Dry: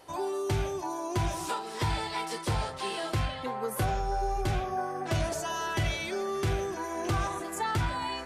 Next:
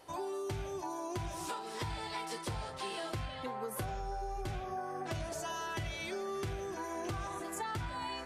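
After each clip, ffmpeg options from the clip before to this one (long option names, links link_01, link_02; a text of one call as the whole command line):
ffmpeg -i in.wav -af "acompressor=threshold=-32dB:ratio=6,volume=-3.5dB" out.wav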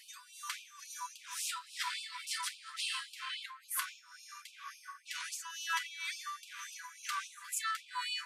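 ffmpeg -i in.wav -af "tremolo=f=2.1:d=0.77,afftfilt=real='re*gte(b*sr/1024,920*pow(2400/920,0.5+0.5*sin(2*PI*3.6*pts/sr)))':imag='im*gte(b*sr/1024,920*pow(2400/920,0.5+0.5*sin(2*PI*3.6*pts/sr)))':win_size=1024:overlap=0.75,volume=9dB" out.wav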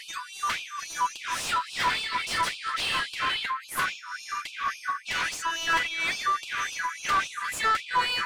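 ffmpeg -i in.wav -filter_complex "[0:a]asplit=2[link_01][link_02];[link_02]highpass=frequency=720:poles=1,volume=23dB,asoftclip=type=tanh:threshold=-19.5dB[link_03];[link_01][link_03]amix=inputs=2:normalize=0,lowpass=frequency=1100:poles=1,volume=-6dB,volume=8dB" out.wav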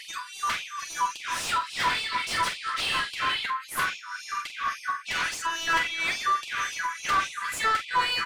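ffmpeg -i in.wav -filter_complex "[0:a]asplit=2[link_01][link_02];[link_02]adelay=45,volume=-10dB[link_03];[link_01][link_03]amix=inputs=2:normalize=0" out.wav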